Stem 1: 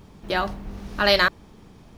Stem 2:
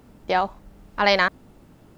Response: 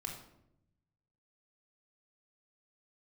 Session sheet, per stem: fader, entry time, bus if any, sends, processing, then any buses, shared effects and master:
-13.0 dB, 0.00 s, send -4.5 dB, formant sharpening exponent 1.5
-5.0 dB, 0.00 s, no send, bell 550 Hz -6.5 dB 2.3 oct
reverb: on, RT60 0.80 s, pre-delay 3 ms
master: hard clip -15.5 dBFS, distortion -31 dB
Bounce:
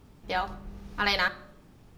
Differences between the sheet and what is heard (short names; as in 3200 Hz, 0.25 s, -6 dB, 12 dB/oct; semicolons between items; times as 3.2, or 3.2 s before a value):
stem 1: missing formant sharpening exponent 1.5; master: missing hard clip -15.5 dBFS, distortion -31 dB